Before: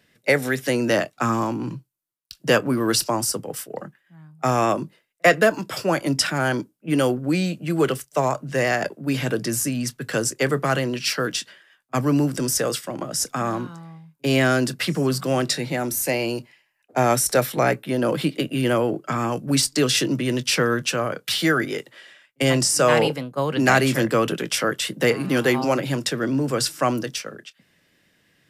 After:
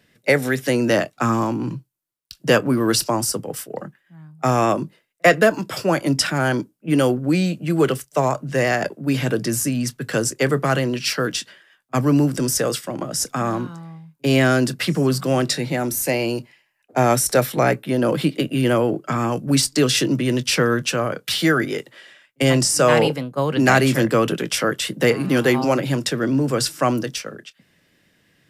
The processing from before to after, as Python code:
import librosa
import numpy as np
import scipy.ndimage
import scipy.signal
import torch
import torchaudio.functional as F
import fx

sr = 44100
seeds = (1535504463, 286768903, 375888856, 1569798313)

y = fx.low_shelf(x, sr, hz=420.0, db=3.0)
y = y * 10.0 ** (1.0 / 20.0)